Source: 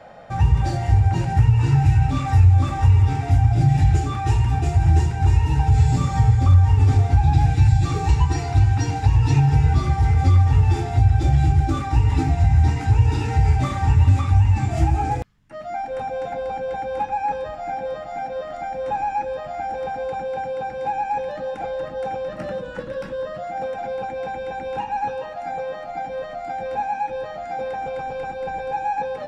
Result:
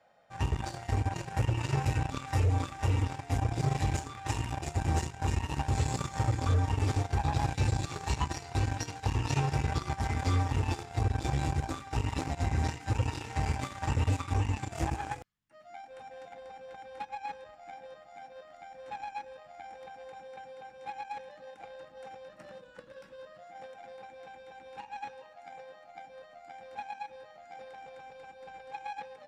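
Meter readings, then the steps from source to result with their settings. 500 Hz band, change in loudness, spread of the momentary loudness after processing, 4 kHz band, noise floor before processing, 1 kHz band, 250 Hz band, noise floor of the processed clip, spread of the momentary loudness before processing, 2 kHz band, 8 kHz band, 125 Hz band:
-14.0 dB, -12.0 dB, 19 LU, -4.5 dB, -33 dBFS, -12.0 dB, -10.5 dB, -55 dBFS, 13 LU, -7.5 dB, n/a, -15.0 dB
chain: added harmonics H 7 -19 dB, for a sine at -4.5 dBFS; tilt +2 dB/oct; gain -7.5 dB

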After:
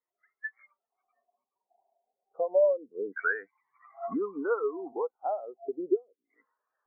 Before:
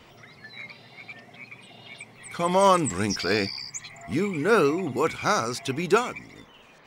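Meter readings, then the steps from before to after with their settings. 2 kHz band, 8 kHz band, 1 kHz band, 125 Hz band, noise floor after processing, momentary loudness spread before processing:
-5.5 dB, under -40 dB, -13.0 dB, under -30 dB, under -85 dBFS, 22 LU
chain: vocal rider within 4 dB 2 s; three-band isolator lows -16 dB, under 280 Hz, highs -21 dB, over 2200 Hz; LFO low-pass saw down 0.32 Hz 460–2000 Hz; compressor 8:1, threshold -35 dBFS, peak gain reduction 23.5 dB; dynamic EQ 1400 Hz, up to +7 dB, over -54 dBFS, Q 0.95; spectral expander 2.5:1; gain +4.5 dB

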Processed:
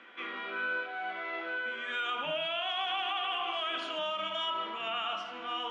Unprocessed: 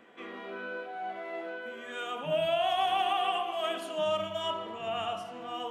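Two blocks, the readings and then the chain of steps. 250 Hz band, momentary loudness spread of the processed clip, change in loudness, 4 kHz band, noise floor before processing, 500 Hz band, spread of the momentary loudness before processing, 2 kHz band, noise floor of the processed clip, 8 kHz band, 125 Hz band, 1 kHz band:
-4.5 dB, 5 LU, -1.0 dB, +3.0 dB, -44 dBFS, -7.0 dB, 12 LU, +5.5 dB, -43 dBFS, n/a, -12.0 dB, -3.5 dB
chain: speaker cabinet 340–5600 Hz, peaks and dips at 440 Hz -8 dB, 680 Hz -7 dB, 1400 Hz +7 dB, 2300 Hz +6 dB, 3300 Hz +5 dB; limiter -28 dBFS, peak gain reduction 9.5 dB; gain +3 dB

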